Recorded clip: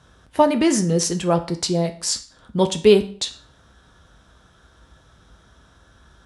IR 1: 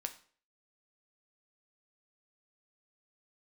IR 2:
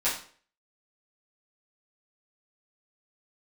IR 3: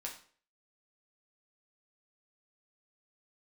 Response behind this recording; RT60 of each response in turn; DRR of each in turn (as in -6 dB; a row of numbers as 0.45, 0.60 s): 1; 0.45, 0.45, 0.45 s; 6.5, -11.0, -1.5 dB